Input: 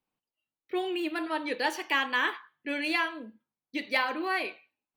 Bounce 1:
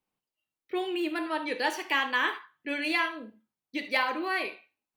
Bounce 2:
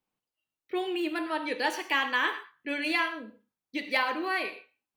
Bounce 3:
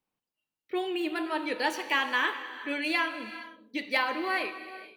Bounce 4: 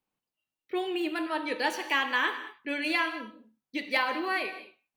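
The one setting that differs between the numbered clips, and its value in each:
reverb whose tail is shaped and stops, gate: 100, 150, 500, 240 milliseconds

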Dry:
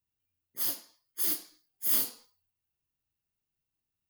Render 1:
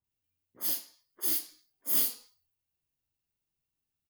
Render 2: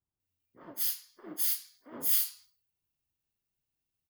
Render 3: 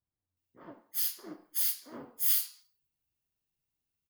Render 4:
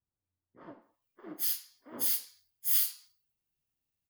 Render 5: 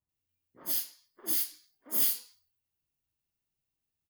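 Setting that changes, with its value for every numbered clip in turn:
multiband delay without the direct sound, delay time: 40, 200, 370, 820, 90 milliseconds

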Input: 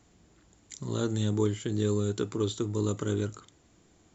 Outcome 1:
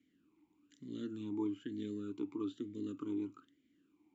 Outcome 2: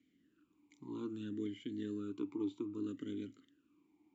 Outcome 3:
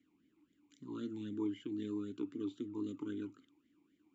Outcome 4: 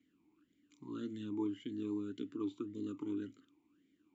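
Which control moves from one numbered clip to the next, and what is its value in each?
formant filter swept between two vowels, speed: 1.1, 0.62, 3.8, 1.8 Hertz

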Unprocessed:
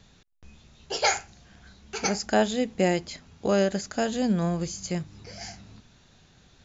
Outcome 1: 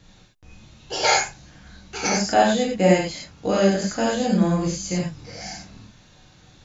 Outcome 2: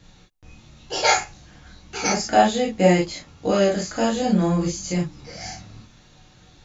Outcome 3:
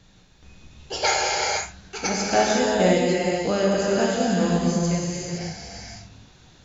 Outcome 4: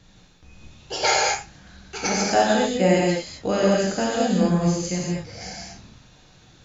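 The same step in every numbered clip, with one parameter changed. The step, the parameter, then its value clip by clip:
reverb whose tail is shaped and stops, gate: 130, 80, 540, 270 milliseconds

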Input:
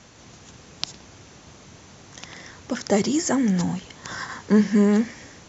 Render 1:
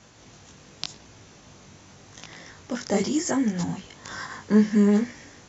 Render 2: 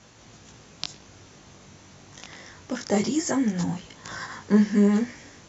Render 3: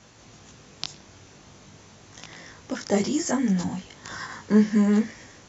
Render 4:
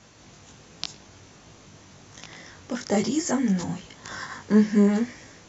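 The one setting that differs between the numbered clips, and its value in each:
chorus effect, speed: 0.86, 0.27, 0.42, 1.3 Hertz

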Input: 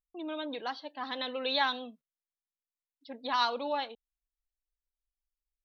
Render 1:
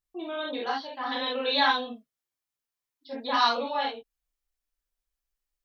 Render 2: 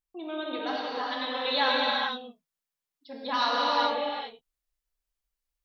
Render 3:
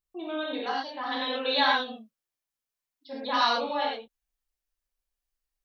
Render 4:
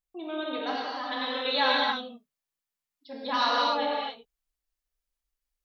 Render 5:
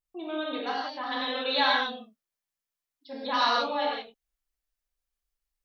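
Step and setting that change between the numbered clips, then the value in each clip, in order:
reverb whose tail is shaped and stops, gate: 90, 470, 140, 310, 200 milliseconds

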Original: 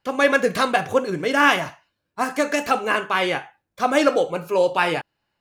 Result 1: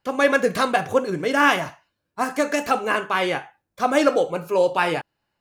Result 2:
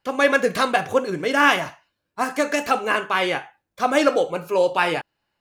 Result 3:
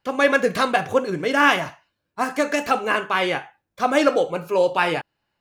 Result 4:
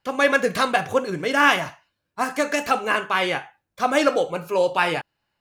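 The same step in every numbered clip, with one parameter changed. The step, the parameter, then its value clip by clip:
parametric band, centre frequency: 2,900, 120, 11,000, 340 Hertz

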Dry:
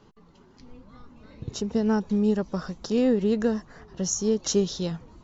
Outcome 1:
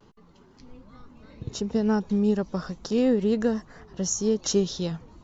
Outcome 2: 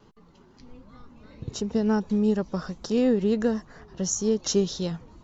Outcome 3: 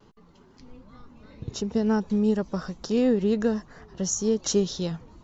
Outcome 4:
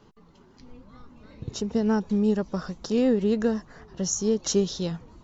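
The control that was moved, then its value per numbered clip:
pitch vibrato, speed: 0.35, 1.5, 0.53, 6.3 Hertz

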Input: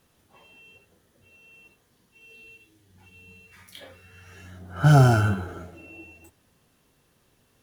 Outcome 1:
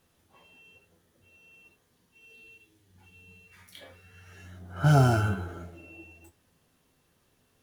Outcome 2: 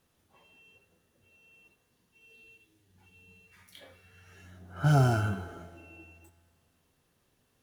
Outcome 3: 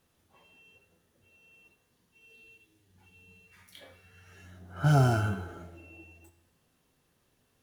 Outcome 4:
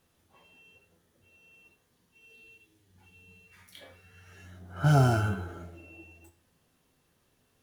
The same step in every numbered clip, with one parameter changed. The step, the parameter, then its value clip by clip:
tuned comb filter, decay: 0.18, 2.1, 0.99, 0.42 seconds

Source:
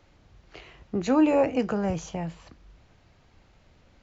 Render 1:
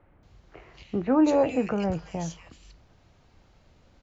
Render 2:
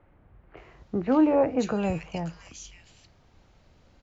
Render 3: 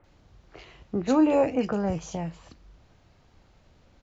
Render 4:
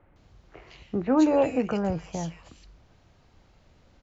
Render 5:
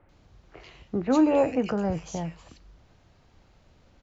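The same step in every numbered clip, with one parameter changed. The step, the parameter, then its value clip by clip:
multiband delay without the direct sound, delay time: 230, 570, 40, 160, 90 milliseconds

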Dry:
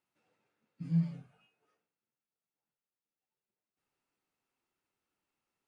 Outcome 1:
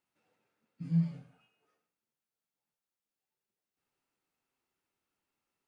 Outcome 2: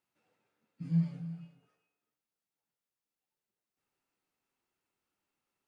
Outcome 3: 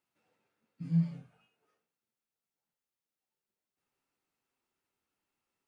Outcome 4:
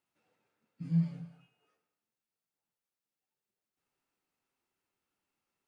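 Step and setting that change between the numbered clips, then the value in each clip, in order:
reverb whose tail is shaped and stops, gate: 170, 460, 90, 270 milliseconds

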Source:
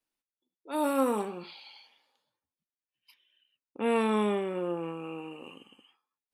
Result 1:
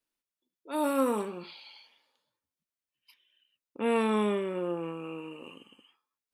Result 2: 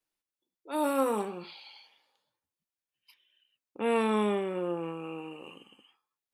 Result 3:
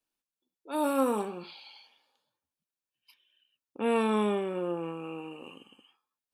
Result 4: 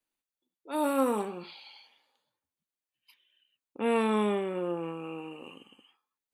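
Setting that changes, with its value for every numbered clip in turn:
notch filter, centre frequency: 780, 250, 2,000, 5,300 Hertz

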